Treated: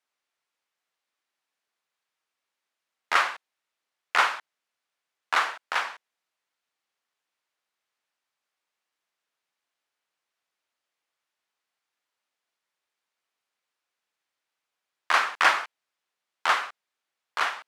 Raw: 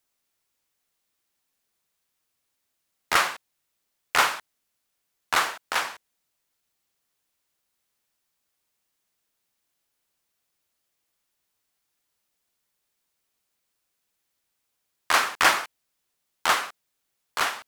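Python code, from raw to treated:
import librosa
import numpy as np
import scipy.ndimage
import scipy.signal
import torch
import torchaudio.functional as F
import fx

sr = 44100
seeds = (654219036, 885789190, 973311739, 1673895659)

y = fx.bandpass_q(x, sr, hz=1400.0, q=0.53)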